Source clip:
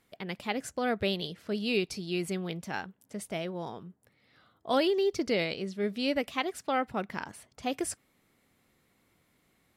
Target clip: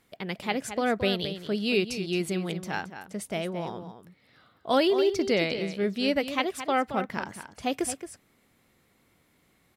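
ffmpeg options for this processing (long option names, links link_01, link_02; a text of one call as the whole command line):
ffmpeg -i in.wav -filter_complex "[0:a]asplit=2[link_01][link_02];[link_02]adelay=221.6,volume=-10dB,highshelf=frequency=4000:gain=-4.99[link_03];[link_01][link_03]amix=inputs=2:normalize=0,volume=3.5dB" out.wav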